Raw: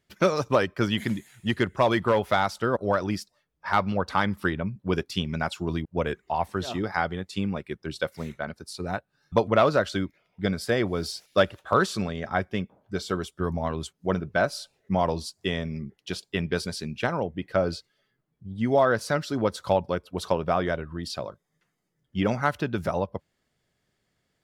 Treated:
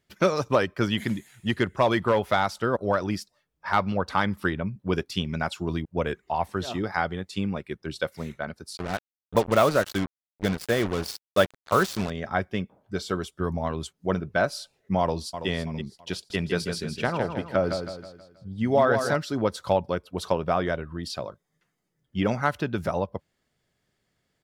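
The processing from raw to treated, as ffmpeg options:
-filter_complex "[0:a]asettb=1/sr,asplit=3[a][b][c];[a]atrim=end=8.774[d];[b]atrim=start=8.77:end=12.1,asetpts=PTS-STARTPTS,afade=t=in:d=0.004:c=qsin,afade=t=out:st=3.326:d=0.004:c=qsin,acrusher=bits=4:mix=0:aa=0.5[e];[c]atrim=start=12.096[f];[d][e]acrossfade=d=0.004:c1=hsin:c2=qsin[g];[g][f]acrossfade=d=0.004:c1=qsin:c2=hsin,asplit=2[h][i];[i]afade=t=in:st=15:d=0.01,afade=t=out:st=15.48:d=0.01,aecho=0:1:330|660|990|1320:0.316228|0.11068|0.0387379|0.0135583[j];[h][j]amix=inputs=2:normalize=0,asettb=1/sr,asplit=3[k][l][m];[k]atrim=end=16.144[n];[l]atrim=start=16.14:end=19.16,asetpts=PTS-STARTPTS,afade=t=in:d=0.004:c=qsin,afade=t=out:st=3.016:d=0.004:c=qsin,aecho=1:1:160|320|480|640|800:0.447|0.192|0.0826|0.0355|0.0153,atrim=end_sample=133182[o];[m]atrim=start=19.156[p];[n][o]acrossfade=d=0.004:c1=hsin:c2=qsin[q];[q][p]acrossfade=d=0.004:c1=qsin:c2=hsin"

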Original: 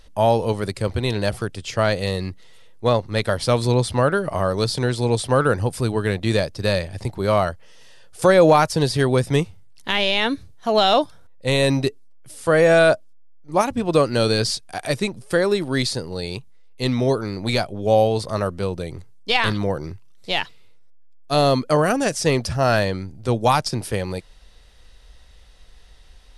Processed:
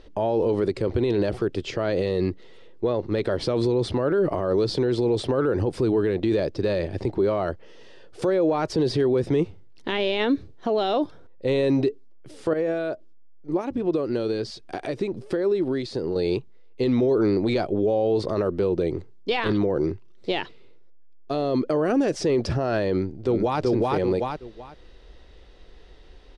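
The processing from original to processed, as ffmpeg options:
-filter_complex "[0:a]asettb=1/sr,asplit=3[a][b][c];[a]atrim=end=12.534[d];[b]atrim=start=12.53:end=16.16,asetpts=PTS-STARTPTS,afade=t=in:d=0.004:c=qsin,afade=t=out:st=3.626:d=0.004:c=qsin,acompressor=threshold=-29dB:ratio=8:attack=3.2:release=140:knee=1:detection=peak[e];[c]atrim=start=16.156[f];[d][e]acrossfade=d=0.004:c1=hsin:c2=qsin[g];[g][f]acrossfade=d=0.004:c1=qsin:c2=hsin,asplit=2[h][i];[i]afade=t=in:st=22.92:d=0.01,afade=t=out:st=23.6:d=0.01,aecho=0:1:380|760|1140:0.944061|0.188812|0.0377624[j];[h][j]amix=inputs=2:normalize=0,lowpass=4.3k,equalizer=f=360:t=o:w=1.1:g=14.5,alimiter=limit=-13.5dB:level=0:latency=1:release=41,volume=-1dB"

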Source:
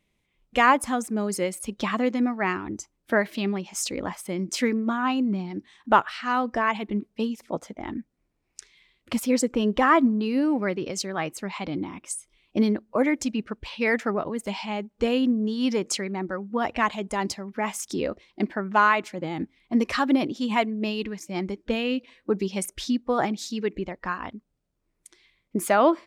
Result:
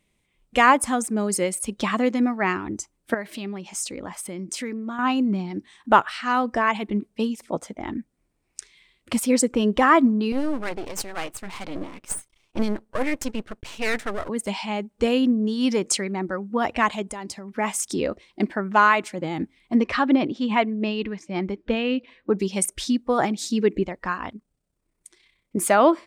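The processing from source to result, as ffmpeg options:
-filter_complex "[0:a]asettb=1/sr,asplit=3[a][b][c];[a]atrim=end=3.144[d];[b]atrim=start=3.14:end=4.99,asetpts=PTS-STARTPTS,afade=t=in:d=0.004:c=qsin,afade=t=out:st=1.846:d=0.004:c=qsin,acompressor=threshold=-37dB:ratio=2:attack=3.2:release=140:knee=1:detection=peak[e];[c]atrim=start=4.986[f];[d][e]acrossfade=d=0.004:c1=hsin:c2=qsin[g];[g][f]acrossfade=d=0.004:c1=qsin:c2=hsin,asettb=1/sr,asplit=3[h][i][j];[h]atrim=end=10.324[k];[i]atrim=start=10.32:end=14.29,asetpts=PTS-STARTPTS,afade=t=in:d=0.004:c=qsin,afade=t=out:st=3.966:d=0.004:c=qsin,aeval=exprs='max(val(0),0)':c=same[l];[j]atrim=start=14.286[m];[k][l]acrossfade=d=0.004:c1=hsin:c2=qsin[n];[n][m]acrossfade=d=0.004:c1=qsin:c2=hsin,asettb=1/sr,asplit=3[o][p][q];[o]atrim=end=17.024[r];[p]atrim=start=17.02:end=17.56,asetpts=PTS-STARTPTS,afade=t=in:d=0.004:c=qsin,afade=t=out:st=0.536:d=0.004:c=qsin,acompressor=threshold=-36dB:ratio=3:attack=3.2:release=140:knee=1:detection=peak[s];[q]atrim=start=17.556[t];[r][s]acrossfade=d=0.004:c1=hsin:c2=qsin[u];[u][t]acrossfade=d=0.004:c1=qsin:c2=hsin,asettb=1/sr,asplit=3[v][w][x];[v]atrim=end=19.754[y];[w]atrim=start=19.75:end=22.39,asetpts=PTS-STARTPTS,afade=t=in:d=0.004:c=qsin,afade=t=out:st=2.636:d=0.004:c=qsin,lowpass=3.5k[z];[x]atrim=start=22.386[aa];[y][z]acrossfade=d=0.004:c1=hsin:c2=qsin[ab];[ab][aa]acrossfade=d=0.004:c1=qsin:c2=hsin,asettb=1/sr,asplit=3[ac][ad][ae];[ac]atrim=end=23.424[af];[ad]atrim=start=23.42:end=23.83,asetpts=PTS-STARTPTS,afade=t=in:d=0.004:c=qsin,afade=t=out:st=0.406:d=0.004:c=qsin,equalizer=f=290:t=o:w=1.9:g=6[ag];[ae]atrim=start=23.826[ah];[af][ag]acrossfade=d=0.004:c1=hsin:c2=qsin[ai];[ai][ah]acrossfade=d=0.004:c1=qsin:c2=hsin,asettb=1/sr,asplit=3[aj][ak][al];[aj]atrim=end=24.334[am];[ak]atrim=start=24.33:end=25.57,asetpts=PTS-STARTPTS,afade=t=in:d=0.004:c=qsin,afade=t=out:st=1.236:d=0.004:c=qsin,tremolo=f=32:d=0.519[an];[al]atrim=start=25.566[ao];[am][an]acrossfade=d=0.004:c1=hsin:c2=qsin[ap];[ap][ao]acrossfade=d=0.004:c1=qsin:c2=hsin,equalizer=f=8.7k:t=o:w=0.4:g=8,volume=2.5dB"

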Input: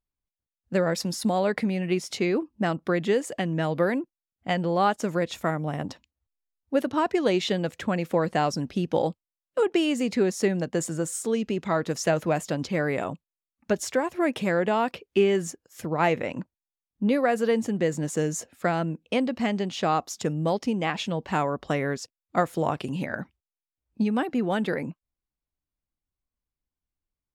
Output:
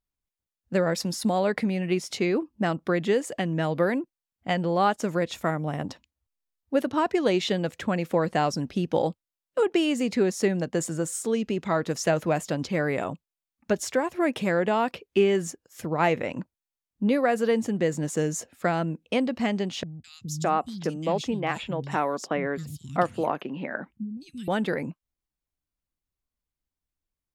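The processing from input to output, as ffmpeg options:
-filter_complex "[0:a]asettb=1/sr,asplit=3[a][b][c];[a]atrim=end=19.834[d];[b]atrim=start=19.83:end=24.48,asetpts=PTS-STARTPTS,afade=t=in:d=0.004:c=qsin,afade=t=out:st=4.646:d=0.004:c=qsin,acrossover=split=180|3300[e][f][g];[g]adelay=210[h];[f]adelay=610[i];[e][i][h]amix=inputs=3:normalize=0,atrim=end_sample=205065[j];[c]atrim=start=24.476[k];[d][j]acrossfade=d=0.004:c1=hsin:c2=qsin[l];[l][k]acrossfade=d=0.004:c1=qsin:c2=hsin"

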